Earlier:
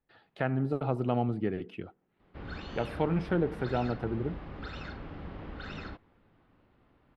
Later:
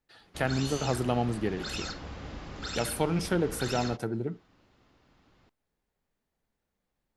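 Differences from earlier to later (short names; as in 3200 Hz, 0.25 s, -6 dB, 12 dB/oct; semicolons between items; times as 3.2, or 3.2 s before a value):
background: entry -2.00 s; master: remove air absorption 410 m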